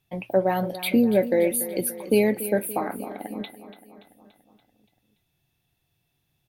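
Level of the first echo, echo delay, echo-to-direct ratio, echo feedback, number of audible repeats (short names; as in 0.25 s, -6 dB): -14.0 dB, 0.287 s, -12.0 dB, 58%, 5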